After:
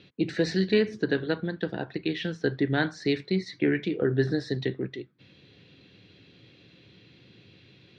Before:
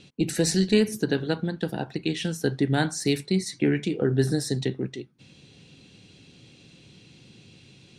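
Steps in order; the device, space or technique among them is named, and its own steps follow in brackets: guitar cabinet (speaker cabinet 82–4000 Hz, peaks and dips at 150 Hz -6 dB, 230 Hz -6 dB, 820 Hz -6 dB, 1800 Hz +4 dB, 2800 Hz -4 dB)

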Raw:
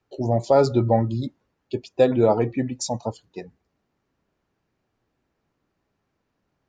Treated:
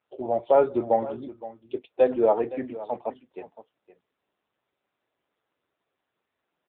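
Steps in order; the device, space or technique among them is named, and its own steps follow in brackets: 1.19–1.89 dynamic EQ 180 Hz, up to -5 dB, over -51 dBFS, Q 6.2; satellite phone (BPF 390–3300 Hz; echo 0.516 s -16 dB; AMR-NB 6.7 kbps 8000 Hz)

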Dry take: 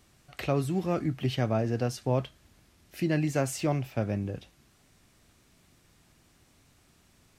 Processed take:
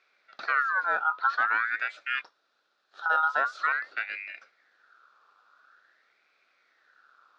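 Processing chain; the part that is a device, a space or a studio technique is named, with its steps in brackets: 2.21–3.06 HPF 1400 Hz 6 dB/oct; voice changer toy (ring modulator with a swept carrier 1700 Hz, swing 35%, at 0.47 Hz; speaker cabinet 450–4100 Hz, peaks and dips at 950 Hz -7 dB, 1400 Hz +10 dB, 2100 Hz -9 dB, 3000 Hz -9 dB); gain +2 dB

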